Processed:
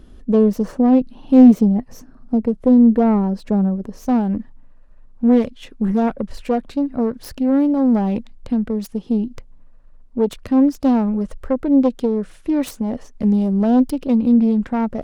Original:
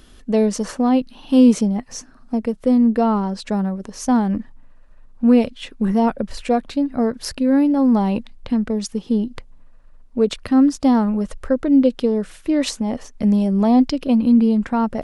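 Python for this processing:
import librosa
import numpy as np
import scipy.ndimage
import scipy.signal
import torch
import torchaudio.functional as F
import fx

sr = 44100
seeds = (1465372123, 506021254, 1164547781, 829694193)

y = fx.self_delay(x, sr, depth_ms=0.28)
y = fx.tilt_shelf(y, sr, db=fx.steps((0.0, 8.0), (4.05, 3.5)), hz=970.0)
y = F.gain(torch.from_numpy(y), -3.0).numpy()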